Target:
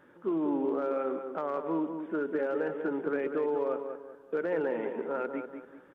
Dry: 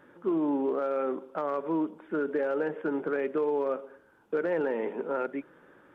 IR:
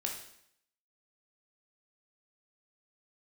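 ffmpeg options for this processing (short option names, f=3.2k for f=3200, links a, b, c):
-filter_complex "[0:a]asplit=2[a][b];[b]adelay=193,lowpass=f=2.1k:p=1,volume=-7dB,asplit=2[c][d];[d]adelay=193,lowpass=f=2.1k:p=1,volume=0.38,asplit=2[e][f];[f]adelay=193,lowpass=f=2.1k:p=1,volume=0.38,asplit=2[g][h];[h]adelay=193,lowpass=f=2.1k:p=1,volume=0.38[i];[a][c][e][g][i]amix=inputs=5:normalize=0,volume=-2.5dB"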